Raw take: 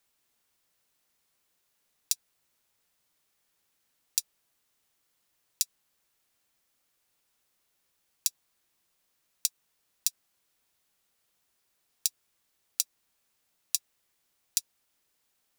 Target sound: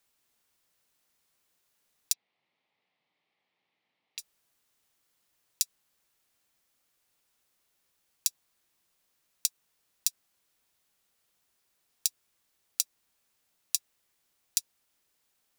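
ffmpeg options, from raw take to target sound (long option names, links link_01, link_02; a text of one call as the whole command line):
ffmpeg -i in.wav -filter_complex "[0:a]asplit=3[link_01][link_02][link_03];[link_01]afade=type=out:start_time=2.12:duration=0.02[link_04];[link_02]highpass=frequency=130:width=0.5412,highpass=frequency=130:width=1.3066,equalizer=frequency=780:width_type=q:width=4:gain=5,equalizer=frequency=1500:width_type=q:width=4:gain=-10,equalizer=frequency=2100:width_type=q:width=4:gain=6,lowpass=frequency=3700:width=0.5412,lowpass=frequency=3700:width=1.3066,afade=type=in:start_time=2.12:duration=0.02,afade=type=out:start_time=4.18:duration=0.02[link_05];[link_03]afade=type=in:start_time=4.18:duration=0.02[link_06];[link_04][link_05][link_06]amix=inputs=3:normalize=0" out.wav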